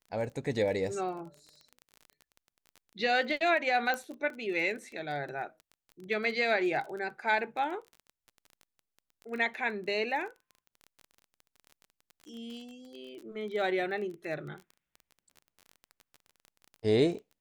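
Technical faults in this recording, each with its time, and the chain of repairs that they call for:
surface crackle 23 per second −39 dBFS
0:03.94: click −19 dBFS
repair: click removal

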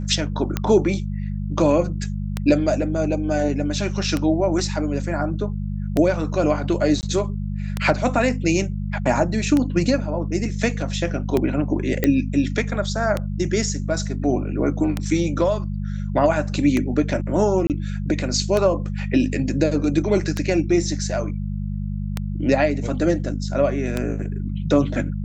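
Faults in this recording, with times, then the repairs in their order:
mains hum 50 Hz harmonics 4 −26 dBFS
scratch tick 33 1/3 rpm −8 dBFS
0:07.01–0:07.03: drop-out 19 ms
0:12.04: click −5 dBFS
0:17.67–0:17.70: drop-out 28 ms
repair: click removal
hum removal 50 Hz, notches 4
repair the gap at 0:07.01, 19 ms
repair the gap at 0:17.67, 28 ms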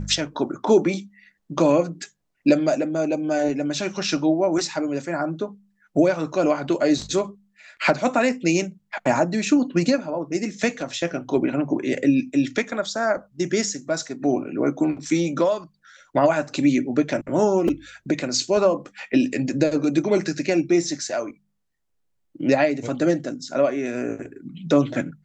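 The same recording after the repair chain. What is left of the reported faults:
none of them is left

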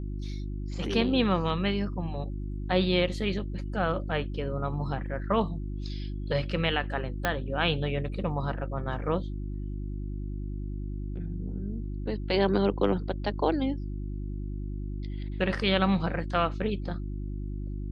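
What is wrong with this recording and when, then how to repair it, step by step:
mains hum 50 Hz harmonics 7 −34 dBFS
0:07.25: click −11 dBFS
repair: click removal
hum removal 50 Hz, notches 7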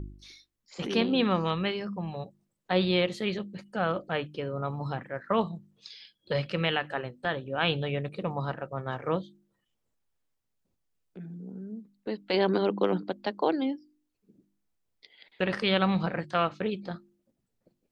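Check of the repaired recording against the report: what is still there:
0:07.25: click

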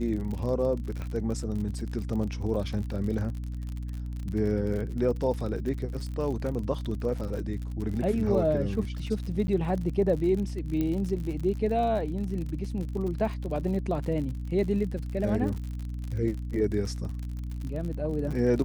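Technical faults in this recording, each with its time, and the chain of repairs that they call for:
surface crackle 55 per second −34 dBFS
mains hum 60 Hz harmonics 5 −34 dBFS
0:01.02: click −24 dBFS
0:09.47–0:09.48: drop-out 10 ms
0:10.81: click −18 dBFS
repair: click removal
hum removal 60 Hz, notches 5
repair the gap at 0:09.47, 10 ms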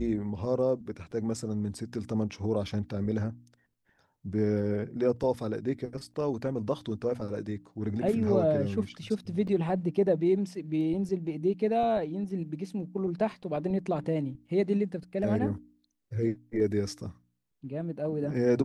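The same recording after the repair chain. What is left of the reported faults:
0:01.02: click
0:10.81: click

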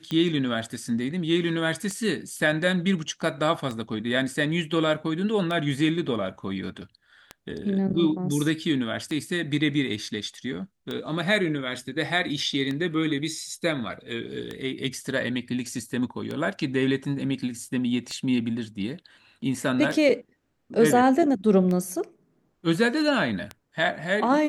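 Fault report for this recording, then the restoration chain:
scratch tick 33 1/3 rpm −18 dBFS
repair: click removal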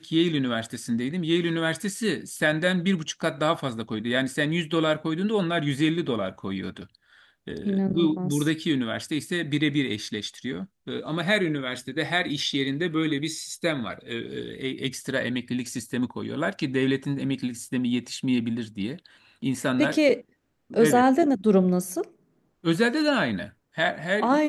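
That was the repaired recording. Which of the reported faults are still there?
none of them is left

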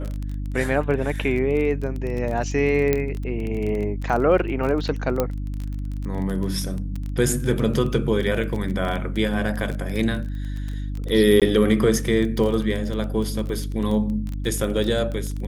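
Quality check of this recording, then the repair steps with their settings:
surface crackle 21 per second −26 dBFS
mains hum 50 Hz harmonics 6 −28 dBFS
0:02.93: click −7 dBFS
0:05.20: click −8 dBFS
0:11.40–0:11.42: drop-out 17 ms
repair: click removal
hum removal 50 Hz, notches 6
repair the gap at 0:11.40, 17 ms

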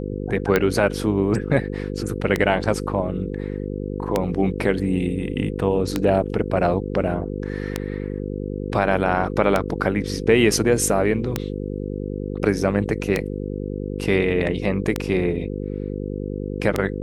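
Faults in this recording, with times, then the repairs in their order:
mains buzz 50 Hz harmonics 10 −28 dBFS
scratch tick 33 1/3 rpm −5 dBFS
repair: click removal
hum removal 50 Hz, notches 10

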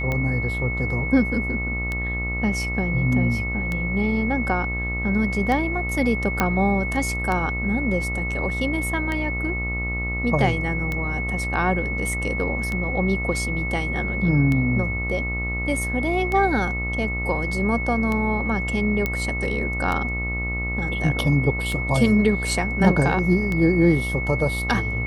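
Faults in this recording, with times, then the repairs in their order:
mains buzz 60 Hz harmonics 23 −28 dBFS
scratch tick 33 1/3 rpm −13 dBFS
whistle 2,200 Hz −27 dBFS
0:06.40: click −5 dBFS
0:19.06: click −10 dBFS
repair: click removal
hum removal 60 Hz, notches 23
notch filter 2,200 Hz, Q 30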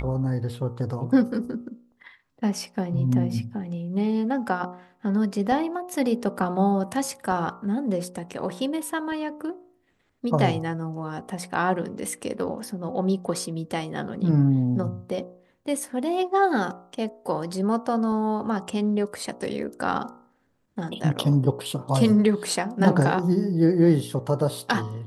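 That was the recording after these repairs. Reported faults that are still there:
none of them is left

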